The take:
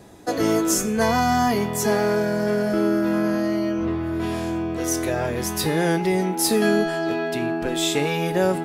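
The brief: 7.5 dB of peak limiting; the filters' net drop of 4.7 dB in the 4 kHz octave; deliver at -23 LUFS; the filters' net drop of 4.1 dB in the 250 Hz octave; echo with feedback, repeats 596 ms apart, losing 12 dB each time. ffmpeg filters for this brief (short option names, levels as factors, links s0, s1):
-af "equalizer=f=250:t=o:g=-6,equalizer=f=4000:t=o:g=-6,alimiter=limit=0.158:level=0:latency=1,aecho=1:1:596|1192|1788:0.251|0.0628|0.0157,volume=1.33"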